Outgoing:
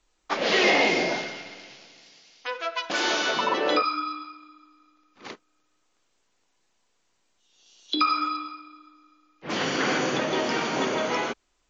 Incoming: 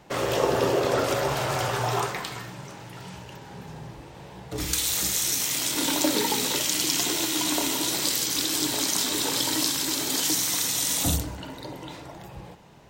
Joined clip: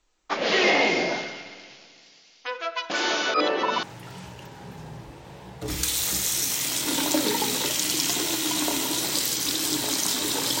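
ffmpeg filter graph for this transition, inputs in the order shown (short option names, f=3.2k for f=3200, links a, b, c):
-filter_complex "[0:a]apad=whole_dur=10.6,atrim=end=10.6,asplit=2[a][b];[a]atrim=end=3.342[c];[b]atrim=start=3.338:end=3.832,asetpts=PTS-STARTPTS,areverse[d];[1:a]atrim=start=2.728:end=9.5[e];[c][d]acrossfade=d=0.004:c1=hsin:c2=hsin[f];[f][e]acrossfade=d=0.004:c1=hsin:c2=hsin"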